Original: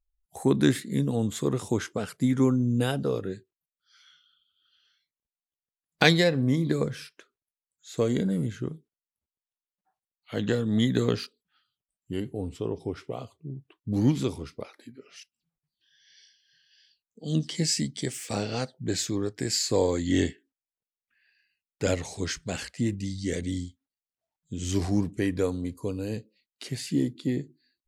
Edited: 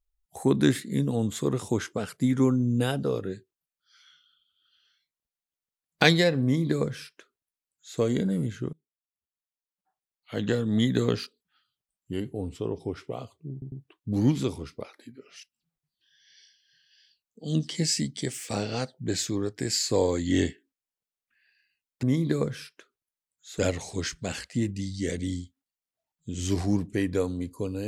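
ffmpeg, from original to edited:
ffmpeg -i in.wav -filter_complex "[0:a]asplit=6[link_01][link_02][link_03][link_04][link_05][link_06];[link_01]atrim=end=8.73,asetpts=PTS-STARTPTS,afade=type=out:start_time=8.726:duration=0.004:curve=hsin:silence=0.0668344[link_07];[link_02]atrim=start=8.73:end=13.622,asetpts=PTS-STARTPTS,afade=type=in:duration=1.78:silence=0.0668344[link_08];[link_03]atrim=start=13.518:end=13.622[link_09];[link_04]atrim=start=13.518:end=21.832[link_10];[link_05]atrim=start=6.428:end=7.992[link_11];[link_06]atrim=start=21.828[link_12];[link_07][link_08]concat=n=2:v=0:a=1[link_13];[link_13][link_09]acrossfade=duration=0.004:curve1=hsin:curve2=hsin[link_14];[link_14][link_10]acrossfade=duration=0.004:curve1=hsin:curve2=hsin[link_15];[link_15][link_11]acrossfade=duration=0.004:curve1=hsin:curve2=hsin[link_16];[link_16][link_12]acrossfade=duration=0.004:curve1=hsin:curve2=hsin" out.wav

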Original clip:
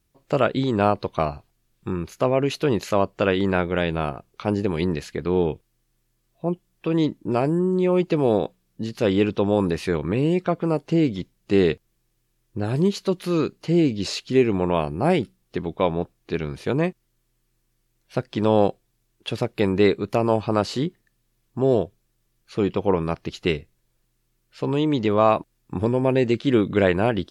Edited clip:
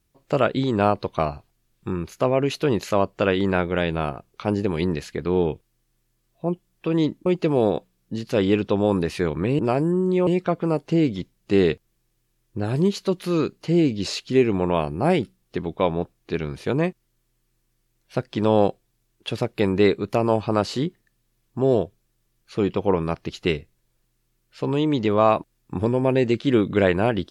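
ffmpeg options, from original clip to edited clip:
ffmpeg -i in.wav -filter_complex "[0:a]asplit=4[link_01][link_02][link_03][link_04];[link_01]atrim=end=7.262[link_05];[link_02]atrim=start=7.938:end=10.272[link_06];[link_03]atrim=start=7.258:end=7.942[link_07];[link_04]atrim=start=10.268[link_08];[link_05][link_06]acrossfade=duration=0.004:curve1=hsin:curve2=hsin[link_09];[link_09][link_07]acrossfade=duration=0.004:curve1=hsin:curve2=hsin[link_10];[link_10][link_08]acrossfade=duration=0.004:curve1=hsin:curve2=hsin" out.wav

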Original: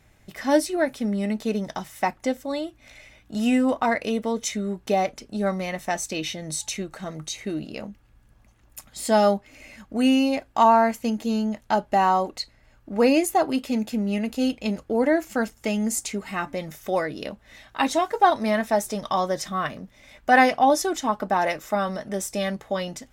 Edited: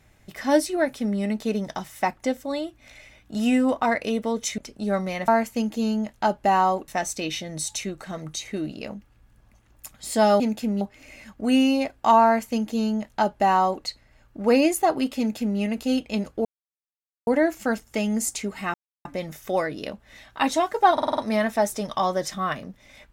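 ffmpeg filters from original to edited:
ffmpeg -i in.wav -filter_complex "[0:a]asplit=13[link_01][link_02][link_03][link_04][link_05][link_06][link_07][link_08][link_09][link_10][link_11][link_12][link_13];[link_01]atrim=end=4.582[link_14];[link_02]atrim=start=5.108:end=5.812[link_15];[link_03]atrim=start=10.758:end=12.362[link_16];[link_04]atrim=start=5.808:end=9.332[link_17];[link_05]atrim=start=13.698:end=14.112[link_18];[link_06]atrim=start=9.328:end=14.97,asetpts=PTS-STARTPTS,afade=type=out:start_time=5.638:duration=0.004:curve=hsin,apad=pad_dur=0.82[link_19];[link_07]atrim=start=14.97:end=16.44,asetpts=PTS-STARTPTS,afade=type=in:duration=0.004:curve=hsin,afade=type=out:start_time=1.466:duration=0.004:curve=hsin,apad=pad_dur=0.31[link_20];[link_08]atrim=start=16.44:end=18.372,asetpts=PTS-STARTPTS,afade=type=in:duration=0.004:curve=hsin[link_21];[link_09]atrim=start=18.318:end=18.372[link_22];[link_10]atrim=start=18.318:end=18.372[link_23];[link_11]atrim=start=18.318:end=18.372[link_24];[link_12]atrim=start=18.318:end=18.372[link_25];[link_13]atrim=start=18.318[link_26];[link_14][link_15]acrossfade=duration=0.004:curve1=hsin:curve2=hsin[link_27];[link_27][link_16]acrossfade=duration=0.004:curve1=hsin:curve2=hsin[link_28];[link_28][link_17]acrossfade=duration=0.004:curve1=hsin:curve2=hsin[link_29];[link_29][link_18]acrossfade=duration=0.004:curve1=hsin:curve2=hsin[link_30];[link_19][link_20][link_21]concat=n=3:v=0:a=1[link_31];[link_30][link_31]acrossfade=duration=0.004:curve1=hsin:curve2=hsin[link_32];[link_32][link_22]acrossfade=duration=0.004:curve1=hsin:curve2=hsin[link_33];[link_33][link_23]acrossfade=duration=0.004:curve1=hsin:curve2=hsin[link_34];[link_34][link_24]acrossfade=duration=0.004:curve1=hsin:curve2=hsin[link_35];[link_35][link_25]acrossfade=duration=0.004:curve1=hsin:curve2=hsin[link_36];[link_36][link_26]acrossfade=duration=0.004:curve1=hsin:curve2=hsin" out.wav

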